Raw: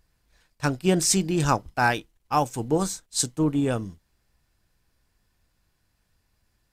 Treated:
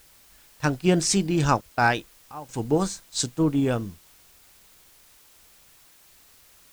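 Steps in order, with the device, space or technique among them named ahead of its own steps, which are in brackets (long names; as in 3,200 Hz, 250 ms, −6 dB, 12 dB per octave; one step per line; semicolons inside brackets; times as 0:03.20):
worn cassette (low-pass filter 6,800 Hz; tape wow and flutter; tape dropouts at 0:01.61/0:02.32/0:05.19/0:05.86, 166 ms −17 dB; white noise bed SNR 28 dB)
level +1 dB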